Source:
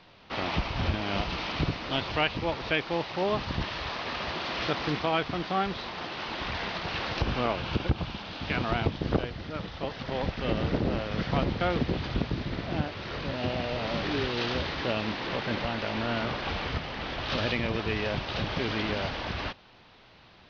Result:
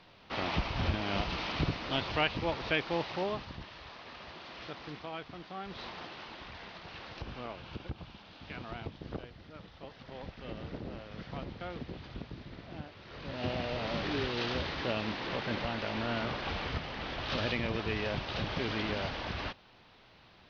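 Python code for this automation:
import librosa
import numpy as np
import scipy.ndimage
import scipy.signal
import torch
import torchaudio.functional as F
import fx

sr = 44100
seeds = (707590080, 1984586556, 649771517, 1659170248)

y = fx.gain(x, sr, db=fx.line((3.13, -3.0), (3.6, -14.5), (5.62, -14.5), (5.83, -5.5), (6.49, -14.0), (13.06, -14.0), (13.46, -4.0)))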